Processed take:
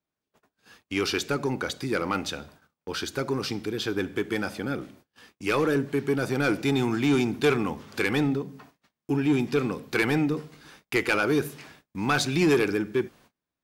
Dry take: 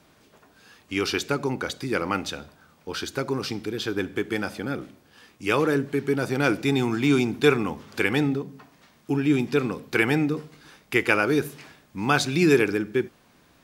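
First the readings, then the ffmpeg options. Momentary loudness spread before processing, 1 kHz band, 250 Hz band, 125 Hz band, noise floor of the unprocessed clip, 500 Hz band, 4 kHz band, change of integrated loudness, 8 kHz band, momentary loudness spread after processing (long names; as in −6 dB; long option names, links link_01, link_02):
12 LU, −2.0 dB, −1.5 dB, −1.5 dB, −59 dBFS, −2.0 dB, −1.0 dB, −2.0 dB, −0.5 dB, 10 LU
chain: -af "agate=range=-31dB:threshold=-52dB:ratio=16:detection=peak,asoftclip=type=tanh:threshold=-15dB"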